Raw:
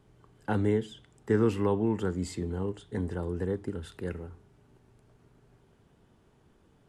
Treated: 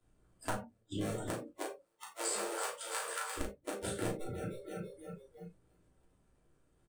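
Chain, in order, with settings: cycle switcher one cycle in 2, muted; 1.35–3.37 HPF 350 Hz -> 1200 Hz 24 dB/oct; AM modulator 160 Hz, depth 25%; feedback echo 0.33 s, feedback 59%, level -12 dB; flipped gate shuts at -24 dBFS, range -36 dB; bell 8700 Hz +13 dB 0.48 oct; reverb RT60 0.35 s, pre-delay 3 ms, DRR -5.5 dB; compressor 2.5:1, threshold -51 dBFS, peak gain reduction 15.5 dB; spectral noise reduction 25 dB; doubler 35 ms -6 dB; gain +11 dB

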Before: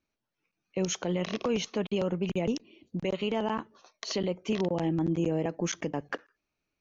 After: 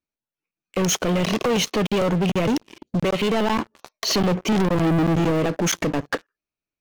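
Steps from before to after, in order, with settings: 4.12–5.31 low shelf 320 Hz +9 dB; sample leveller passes 5; in parallel at -1 dB: limiter -22 dBFS, peak gain reduction 8 dB; on the sum: gain -5 dB

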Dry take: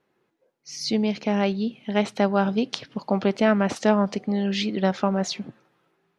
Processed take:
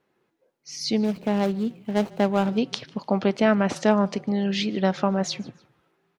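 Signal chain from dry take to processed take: 1–2.58 median filter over 25 samples; frequency-shifting echo 0.149 s, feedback 37%, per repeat -35 Hz, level -24 dB

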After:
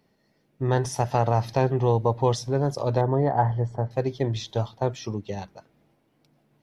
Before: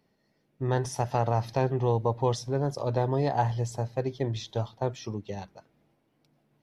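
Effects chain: 3.01–3.91 polynomial smoothing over 41 samples; gain +4 dB

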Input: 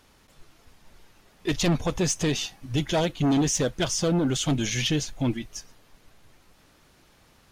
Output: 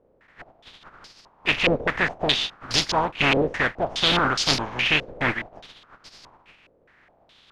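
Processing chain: spectral contrast lowered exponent 0.35; stepped low-pass 4.8 Hz 510–4900 Hz

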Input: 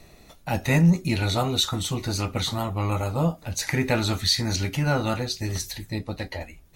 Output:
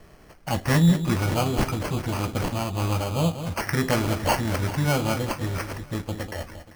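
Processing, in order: echo with dull and thin repeats by turns 0.195 s, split 2000 Hz, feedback 58%, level -10 dB; sample-and-hold 12×

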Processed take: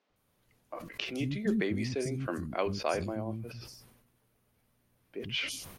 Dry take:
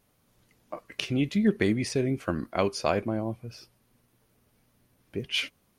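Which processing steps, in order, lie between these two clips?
three bands offset in time mids, lows, highs 0.1/0.16 s, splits 250/5600 Hz; sustainer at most 54 dB/s; gain -5 dB

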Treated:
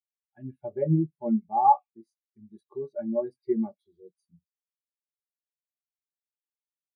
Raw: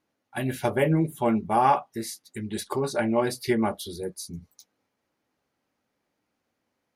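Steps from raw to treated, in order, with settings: delay with a stepping band-pass 0.133 s, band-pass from 2900 Hz, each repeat 0.7 oct, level -6.5 dB; spectral expander 2.5:1

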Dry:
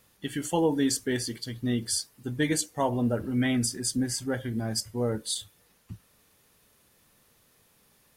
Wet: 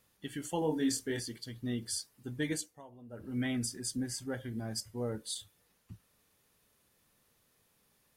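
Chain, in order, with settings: 0.59–1.2 doubler 26 ms -4 dB; 2.53–3.37 dip -18.5 dB, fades 0.29 s; gain -8 dB

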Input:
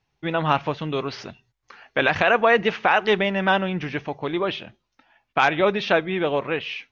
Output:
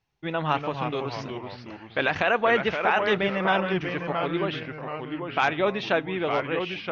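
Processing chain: echoes that change speed 0.25 s, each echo -2 st, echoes 3, each echo -6 dB; gain -4.5 dB

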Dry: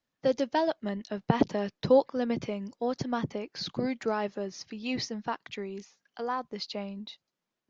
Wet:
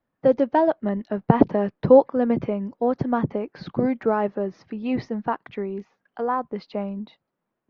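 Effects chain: LPF 1400 Hz 12 dB/oct; gain +8.5 dB

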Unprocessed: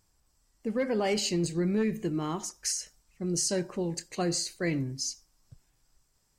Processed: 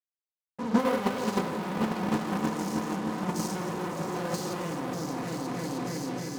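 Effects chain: stepped spectrum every 0.2 s; high shelf 2200 Hz -11 dB; on a send: repeats that get brighter 0.311 s, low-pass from 750 Hz, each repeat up 2 oct, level 0 dB; on the sum: fuzz box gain 48 dB, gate -52 dBFS; HPF 120 Hz 12 dB/oct; bell 990 Hz +6.5 dB 0.61 oct; shoebox room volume 1900 m³, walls furnished, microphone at 1.9 m; AGC gain up to 6.5 dB; gate -8 dBFS, range -16 dB; gain -4 dB

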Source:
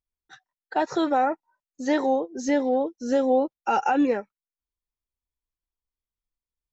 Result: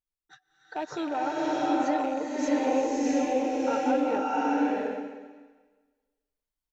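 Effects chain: rattling part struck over -34 dBFS, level -27 dBFS; comb 6.7 ms, depth 34%; limiter -18.5 dBFS, peak gain reduction 7.5 dB; bloom reverb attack 0.7 s, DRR -5 dB; gain -5.5 dB

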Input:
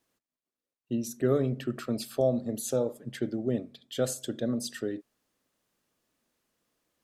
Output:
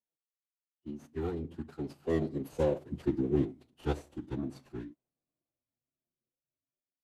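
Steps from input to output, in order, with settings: median filter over 25 samples; Doppler pass-by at 3.09, 18 m/s, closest 9.6 m; spectral noise reduction 14 dB; formant-preserving pitch shift -9 st; gain +2.5 dB

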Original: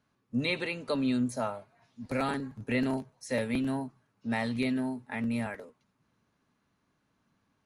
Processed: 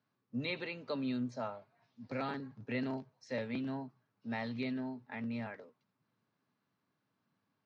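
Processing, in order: elliptic band-pass 110–5200 Hz, stop band 40 dB; gain -7 dB

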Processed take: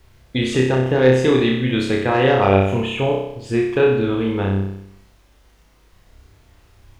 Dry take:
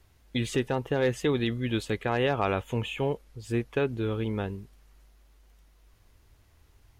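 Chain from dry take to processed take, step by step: air absorption 53 m; flutter echo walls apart 5.3 m, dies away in 0.75 s; requantised 12-bit, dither none; gain +7.5 dB

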